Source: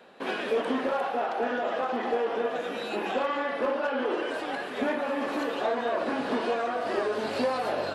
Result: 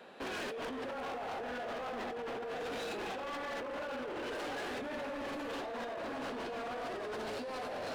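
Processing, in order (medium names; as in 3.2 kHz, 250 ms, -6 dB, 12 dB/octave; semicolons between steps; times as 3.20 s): two-band feedback delay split 930 Hz, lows 246 ms, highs 82 ms, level -8.5 dB; compressor with a negative ratio -32 dBFS, ratio -1; overload inside the chain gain 33.5 dB; trim -4 dB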